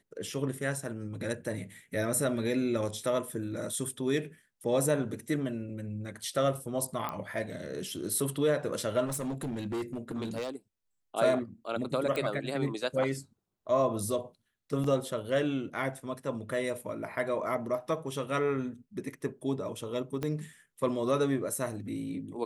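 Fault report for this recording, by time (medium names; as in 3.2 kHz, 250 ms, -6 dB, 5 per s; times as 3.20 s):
7.09 s: pop -20 dBFS
9.05–10.56 s: clipped -30.5 dBFS
12.16 s: pop -20 dBFS
14.84 s: dropout 3.2 ms
20.23 s: pop -20 dBFS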